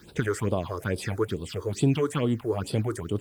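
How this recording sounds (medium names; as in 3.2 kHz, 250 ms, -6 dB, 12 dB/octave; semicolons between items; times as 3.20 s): a quantiser's noise floor 10-bit, dither none; phasing stages 6, 2.3 Hz, lowest notch 180–1900 Hz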